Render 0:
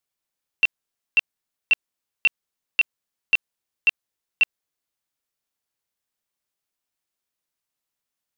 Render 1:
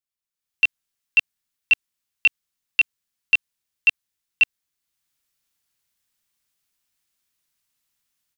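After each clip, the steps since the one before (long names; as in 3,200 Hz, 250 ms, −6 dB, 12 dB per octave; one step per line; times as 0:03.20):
parametric band 550 Hz −9.5 dB 2.1 octaves
automatic gain control gain up to 16.5 dB
level −7.5 dB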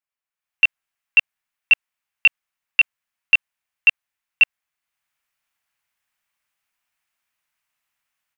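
flat-topped bell 1,300 Hz +10.5 dB 2.5 octaves
level −5.5 dB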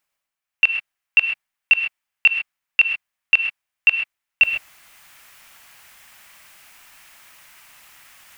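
reversed playback
upward compression, threshold −26 dBFS
reversed playback
reverb whose tail is shaped and stops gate 150 ms rising, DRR 5 dB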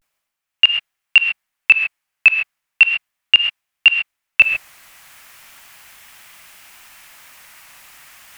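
pitch vibrato 0.36 Hz 65 cents
level +4.5 dB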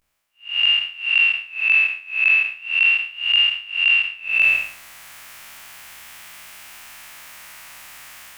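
spectrum smeared in time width 205 ms
level +5 dB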